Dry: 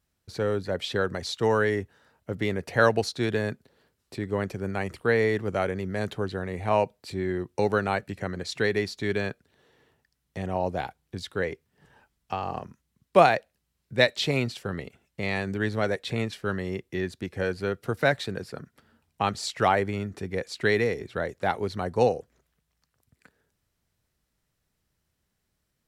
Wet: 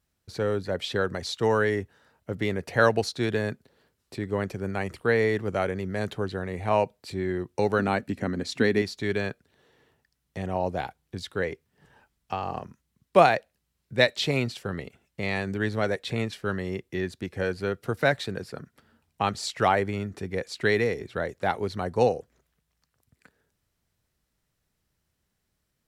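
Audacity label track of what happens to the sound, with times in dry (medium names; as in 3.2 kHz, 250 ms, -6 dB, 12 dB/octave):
7.790000	8.820000	peaking EQ 250 Hz +14 dB 0.51 oct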